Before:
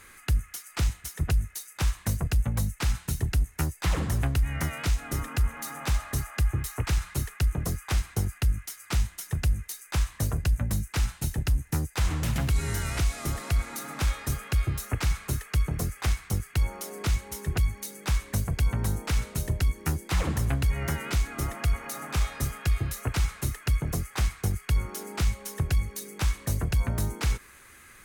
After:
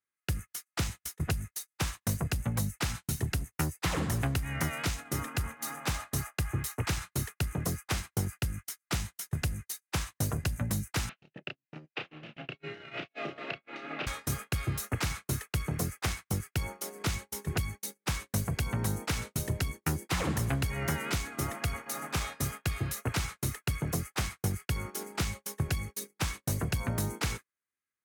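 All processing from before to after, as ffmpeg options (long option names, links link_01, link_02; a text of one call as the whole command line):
ffmpeg -i in.wav -filter_complex "[0:a]asettb=1/sr,asplit=3[link_01][link_02][link_03];[link_01]atrim=end=11.094[link_04];[link_02]atrim=start=11.09:end=14.07,asetpts=PTS-STARTPTS,afade=type=in:duration=0.004:curve=qsin,afade=type=out:start_time=2.976:duration=0.004:curve=qsin,acompressor=threshold=-31dB:ratio=16:attack=3.2:release=140:knee=1:detection=peak,highpass=frequency=160:width=0.5412,highpass=frequency=160:width=1.3066,equalizer=frequency=200:width_type=q:width=4:gain=-3,equalizer=frequency=400:width_type=q:width=4:gain=3,equalizer=frequency=610:width_type=q:width=4:gain=7,equalizer=frequency=970:width_type=q:width=4:gain=-7,equalizer=frequency=2700:width_type=q:width=4:gain=9,lowpass=frequency=3500:width=0.5412,lowpass=frequency=3500:width=1.3066,asplit=2[link_05][link_06];[link_06]adelay=32,volume=-5dB[link_07];[link_05][link_07]amix=inputs=2:normalize=0,atrim=end_sample=131418[link_08];[link_03]atrim=start=14.066[link_09];[link_04][link_08]acrossfade=duration=0.004:curve1=hsin:curve2=qsin[link_10];[link_10][link_09]acrossfade=duration=0.004:curve1=qsin:curve2=hsin,highpass=110,agate=range=-43dB:threshold=-38dB:ratio=16:detection=peak" out.wav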